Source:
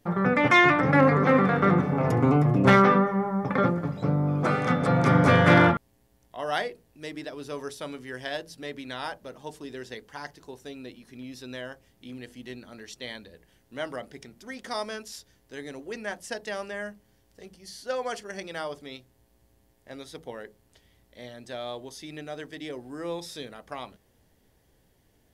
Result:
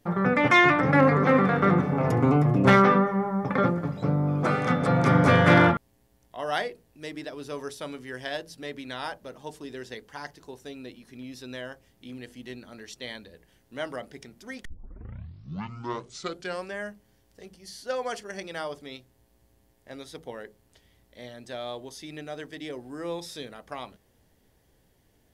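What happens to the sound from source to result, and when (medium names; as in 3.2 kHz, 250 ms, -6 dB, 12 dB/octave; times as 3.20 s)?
14.65 s: tape start 2.12 s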